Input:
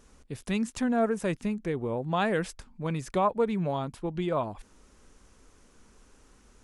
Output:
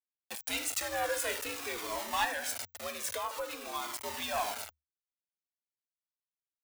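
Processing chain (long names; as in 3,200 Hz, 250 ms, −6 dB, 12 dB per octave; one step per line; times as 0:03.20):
rectangular room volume 270 cubic metres, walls mixed, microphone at 0.53 metres
centre clipping without the shift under −36.5 dBFS
0:02.24–0:04.03: downward compressor 6 to 1, threshold −29 dBFS, peak gain reduction 10 dB
frequency shifter +74 Hz
spectral tilt +3 dB per octave
soft clipping −25.5 dBFS, distortion −12 dB
parametric band 190 Hz −14.5 dB 2 octaves
flanger whose copies keep moving one way falling 0.5 Hz
level +6 dB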